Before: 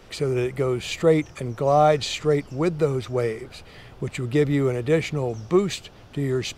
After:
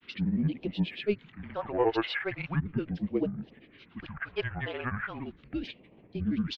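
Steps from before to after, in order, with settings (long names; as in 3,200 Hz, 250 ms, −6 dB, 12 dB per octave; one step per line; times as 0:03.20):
single-sideband voice off tune −160 Hz 320–3,000 Hz
granular cloud, grains 17 per second, spray 100 ms, pitch spread up and down by 7 semitones
all-pass phaser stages 2, 0.38 Hz, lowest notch 210–1,400 Hz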